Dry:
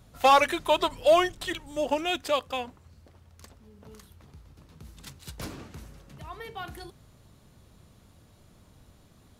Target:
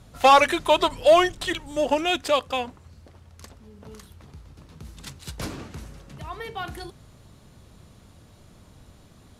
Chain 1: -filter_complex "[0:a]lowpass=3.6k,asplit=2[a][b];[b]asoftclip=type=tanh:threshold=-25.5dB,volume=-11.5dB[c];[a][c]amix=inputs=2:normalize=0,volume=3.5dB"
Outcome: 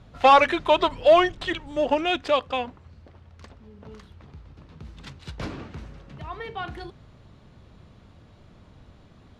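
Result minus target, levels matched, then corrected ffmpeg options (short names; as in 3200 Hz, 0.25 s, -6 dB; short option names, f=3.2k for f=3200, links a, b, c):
8000 Hz band -11.5 dB
-filter_complex "[0:a]lowpass=12k,asplit=2[a][b];[b]asoftclip=type=tanh:threshold=-25.5dB,volume=-11.5dB[c];[a][c]amix=inputs=2:normalize=0,volume=3.5dB"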